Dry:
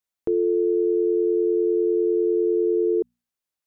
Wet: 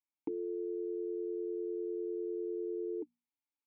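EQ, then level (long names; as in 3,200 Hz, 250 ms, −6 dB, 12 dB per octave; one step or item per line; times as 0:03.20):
formant filter u
parametric band 360 Hz −13 dB 0.27 octaves
+4.5 dB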